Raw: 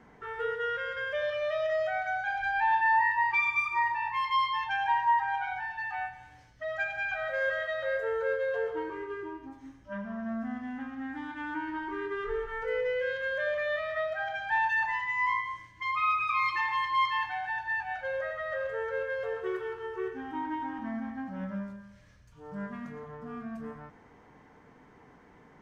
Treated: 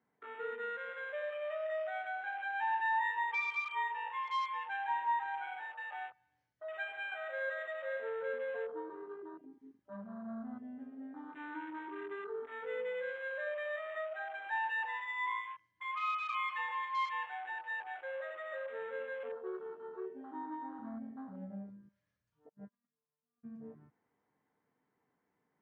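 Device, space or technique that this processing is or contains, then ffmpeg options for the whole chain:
over-cleaned archive recording: -filter_complex "[0:a]asplit=3[s0][s1][s2];[s0]afade=t=out:st=22.48:d=0.02[s3];[s1]agate=range=0.0355:threshold=0.0178:ratio=16:detection=peak,afade=t=in:st=22.48:d=0.02,afade=t=out:st=23.43:d=0.02[s4];[s2]afade=t=in:st=23.43:d=0.02[s5];[s3][s4][s5]amix=inputs=3:normalize=0,highpass=120,lowpass=5500,afwtdn=0.0126,volume=0.398"

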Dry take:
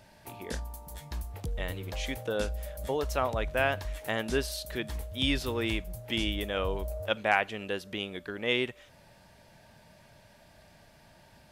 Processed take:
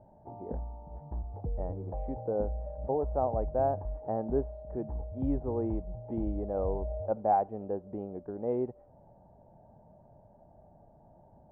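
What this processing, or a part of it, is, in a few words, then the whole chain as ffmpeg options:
under water: -af "lowpass=f=750:w=0.5412,lowpass=f=750:w=1.3066,equalizer=f=800:t=o:w=0.43:g=8"

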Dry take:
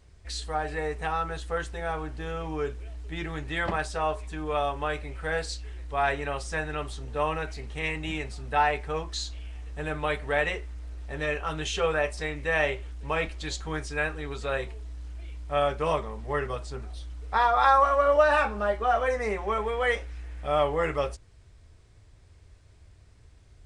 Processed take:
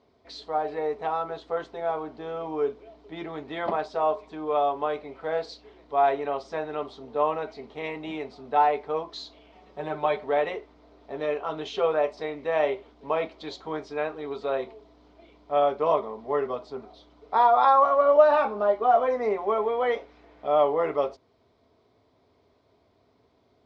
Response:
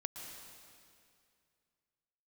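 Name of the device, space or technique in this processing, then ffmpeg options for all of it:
kitchen radio: -filter_complex "[0:a]highpass=220,equalizer=f=250:t=q:w=4:g=10,equalizer=f=420:t=q:w=4:g=7,equalizer=f=670:t=q:w=4:g=9,equalizer=f=1000:t=q:w=4:g=6,equalizer=f=1700:t=q:w=4:g=-9,equalizer=f=2700:t=q:w=4:g=-7,lowpass=f=4500:w=0.5412,lowpass=f=4500:w=1.3066,asettb=1/sr,asplit=3[s0][s1][s2];[s0]atrim=end=9.524[s3];[s1]atrim=start=9.52:end=10.24,asetpts=PTS-STARTPTS,afade=t=in:d=0.004:c=qsin,afade=t=out:st=0.716:d=0.004:c=qsin,aecho=1:1:5.4:0.76,atrim=end_sample=31752[s4];[s2]atrim=start=10.236[s5];[s3][s4]acrossfade=d=0.004:c1=hsin:c2=qsin[s6];[s6][s5]acrossfade=d=0.004:c1=qsin:c2=hsin,volume=0.794"

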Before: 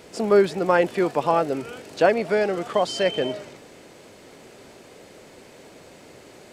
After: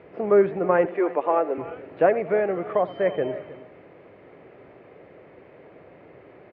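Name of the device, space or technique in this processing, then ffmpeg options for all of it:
bass cabinet: -filter_complex "[0:a]acrossover=split=3600[s0][s1];[s1]acompressor=threshold=0.002:ratio=4:attack=1:release=60[s2];[s0][s2]amix=inputs=2:normalize=0,asettb=1/sr,asplit=3[s3][s4][s5];[s3]atrim=end=0.854[s6];[s4]atrim=start=0.85:end=1.58,asetpts=PTS-STARTPTS,afade=t=in:d=0.004:c=qsin,afade=t=out:st=0.726:d=0.004:c=qsin,highpass=f=280:w=0.5412,highpass=f=280:w=1.3066[s7];[s5]atrim=start=1.576[s8];[s6][s7]acrossfade=d=0.004:c1=hsin:c2=qsin[s9];[s9][s8]acrossfade=d=0.004:c1=qsin:c2=hsin,asettb=1/sr,asplit=3[s10][s11][s12];[s10]atrim=end=2.784[s13];[s11]atrim=start=2.78:end=3.21,asetpts=PTS-STARTPTS,afade=t=in:d=0.004:c=qsin,afade=t=out:st=0.426:d=0.004:c=qsin,bandreject=f=2700:w=6.8[s14];[s12]atrim=start=3.206[s15];[s13][s14]acrossfade=d=0.004:c1=hsin:c2=qsin[s16];[s16][s15]acrossfade=d=0.004:c1=qsin:c2=hsin,highpass=70,equalizer=f=230:t=q:w=4:g=-8,equalizer=f=900:t=q:w=4:g=-4,equalizer=f=1500:t=q:w=4:g=-5,lowpass=f=2100:w=0.5412,lowpass=f=2100:w=1.3066,aecho=1:1:84|314:0.133|0.141"

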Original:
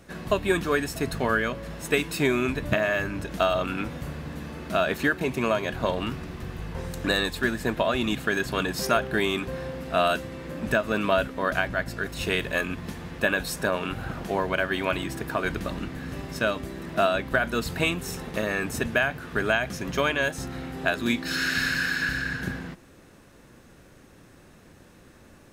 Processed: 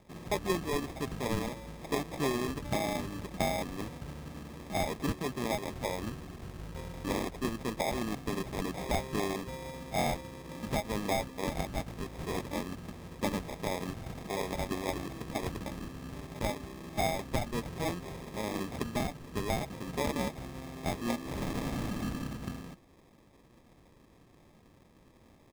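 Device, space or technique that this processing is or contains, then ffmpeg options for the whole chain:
crushed at another speed: -af "asetrate=35280,aresample=44100,acrusher=samples=38:mix=1:aa=0.000001,asetrate=55125,aresample=44100,volume=0.398"

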